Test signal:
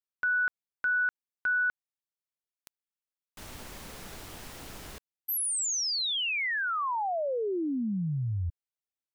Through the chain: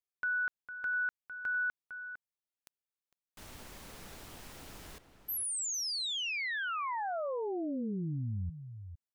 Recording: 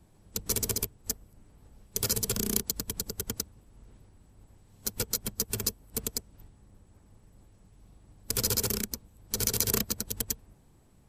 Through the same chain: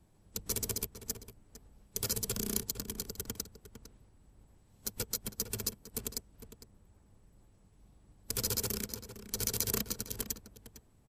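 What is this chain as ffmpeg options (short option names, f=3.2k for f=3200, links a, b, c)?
-filter_complex "[0:a]asplit=2[a][b];[b]adelay=454.8,volume=-10dB,highshelf=f=4k:g=-10.2[c];[a][c]amix=inputs=2:normalize=0,volume=-5.5dB"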